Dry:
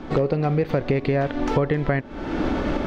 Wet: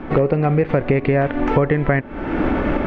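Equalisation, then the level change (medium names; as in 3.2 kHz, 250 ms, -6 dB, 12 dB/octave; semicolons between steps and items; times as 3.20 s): distance through air 60 m; resonant high shelf 3.2 kHz -9.5 dB, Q 1.5; +4.5 dB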